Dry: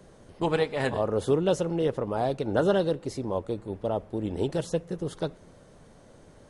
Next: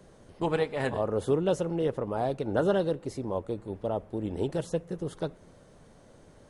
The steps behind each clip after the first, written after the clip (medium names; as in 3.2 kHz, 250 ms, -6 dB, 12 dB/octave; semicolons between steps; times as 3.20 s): dynamic bell 4.7 kHz, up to -4 dB, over -52 dBFS, Q 0.9; trim -2 dB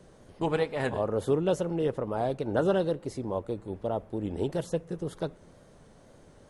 wow and flutter 45 cents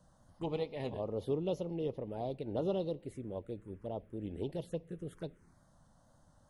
touch-sensitive phaser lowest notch 380 Hz, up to 1.6 kHz, full sweep at -25.5 dBFS; trim -7.5 dB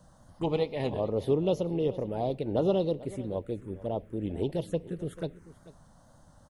delay 440 ms -18.5 dB; trim +8 dB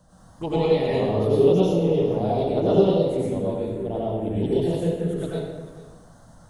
plate-style reverb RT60 1.1 s, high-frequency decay 0.8×, pre-delay 80 ms, DRR -7.5 dB